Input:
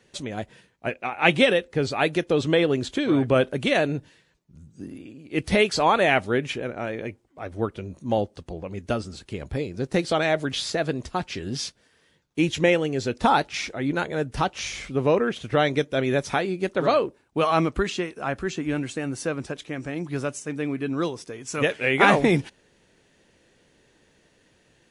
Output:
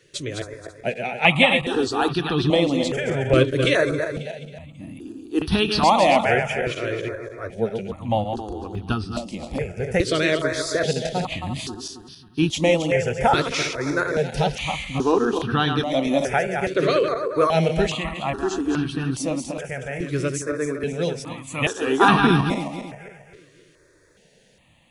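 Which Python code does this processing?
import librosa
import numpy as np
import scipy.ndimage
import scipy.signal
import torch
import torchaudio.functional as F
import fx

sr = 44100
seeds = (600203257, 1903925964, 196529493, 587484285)

y = fx.reverse_delay_fb(x, sr, ms=135, feedback_pct=60, wet_db=-6.0)
y = fx.phaser_held(y, sr, hz=2.4, low_hz=220.0, high_hz=2100.0)
y = y * librosa.db_to_amplitude(5.0)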